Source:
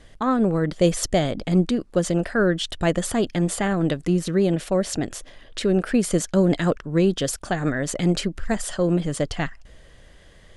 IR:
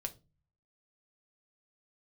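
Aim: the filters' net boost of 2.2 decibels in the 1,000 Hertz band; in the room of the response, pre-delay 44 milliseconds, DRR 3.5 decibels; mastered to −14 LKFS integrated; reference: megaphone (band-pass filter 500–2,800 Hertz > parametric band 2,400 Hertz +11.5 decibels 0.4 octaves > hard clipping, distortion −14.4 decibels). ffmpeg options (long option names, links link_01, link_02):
-filter_complex "[0:a]equalizer=frequency=1000:width_type=o:gain=3.5,asplit=2[link_01][link_02];[1:a]atrim=start_sample=2205,adelay=44[link_03];[link_02][link_03]afir=irnorm=-1:irlink=0,volume=-2.5dB[link_04];[link_01][link_04]amix=inputs=2:normalize=0,highpass=500,lowpass=2800,equalizer=frequency=2400:width_type=o:width=0.4:gain=11.5,asoftclip=type=hard:threshold=-17.5dB,volume=12.5dB"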